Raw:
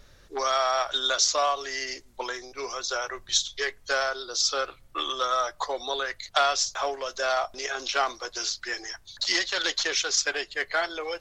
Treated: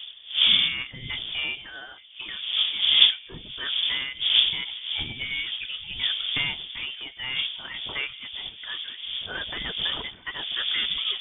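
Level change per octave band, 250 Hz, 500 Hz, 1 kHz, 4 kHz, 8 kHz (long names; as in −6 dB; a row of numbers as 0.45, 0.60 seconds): −2.5 dB, −18.5 dB, −16.5 dB, +7.5 dB, below −40 dB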